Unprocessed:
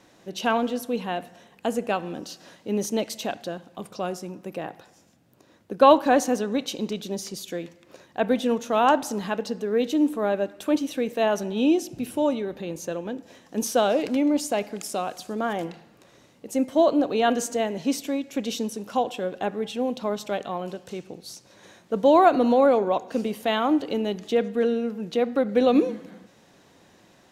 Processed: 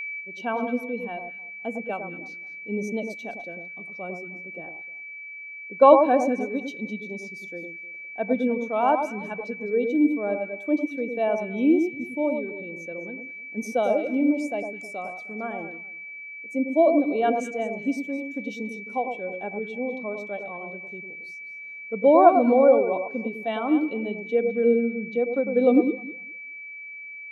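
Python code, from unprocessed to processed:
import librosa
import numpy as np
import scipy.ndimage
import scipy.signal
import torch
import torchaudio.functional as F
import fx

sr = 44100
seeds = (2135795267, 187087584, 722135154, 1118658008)

y = x + 10.0 ** (-26.0 / 20.0) * np.sin(2.0 * np.pi * 2300.0 * np.arange(len(x)) / sr)
y = fx.echo_alternate(y, sr, ms=103, hz=1300.0, feedback_pct=55, wet_db=-4.0)
y = fx.spectral_expand(y, sr, expansion=1.5)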